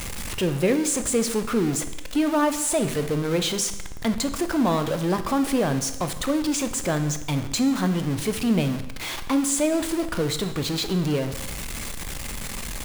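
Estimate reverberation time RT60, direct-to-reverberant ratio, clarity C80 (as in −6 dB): 0.95 s, 9.0 dB, 13.5 dB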